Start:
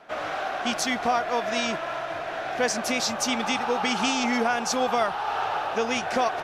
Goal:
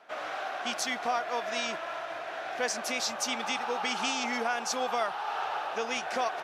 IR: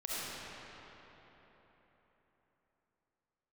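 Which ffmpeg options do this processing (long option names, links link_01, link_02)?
-af "highpass=frequency=480:poles=1,volume=-4.5dB"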